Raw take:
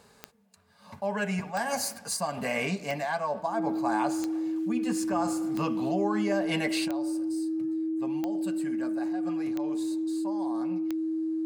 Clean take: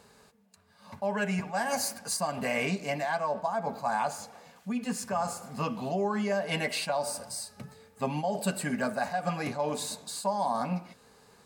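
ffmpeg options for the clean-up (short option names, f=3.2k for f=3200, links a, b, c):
-af "adeclick=t=4,bandreject=f=320:w=30,asetnsamples=n=441:p=0,asendcmd='6.88 volume volume 11dB',volume=0dB"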